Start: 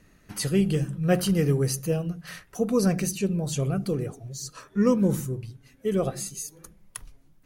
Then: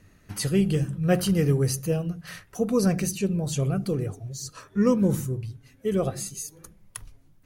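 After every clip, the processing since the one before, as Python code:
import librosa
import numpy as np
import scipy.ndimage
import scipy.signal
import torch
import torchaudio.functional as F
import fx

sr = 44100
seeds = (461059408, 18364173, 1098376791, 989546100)

y = fx.peak_eq(x, sr, hz=97.0, db=11.0, octaves=0.37)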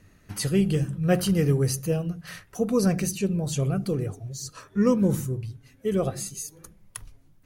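y = x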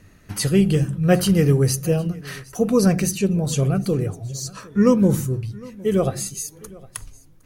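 y = x + 10.0 ** (-22.5 / 20.0) * np.pad(x, (int(761 * sr / 1000.0), 0))[:len(x)]
y = y * 10.0 ** (5.5 / 20.0)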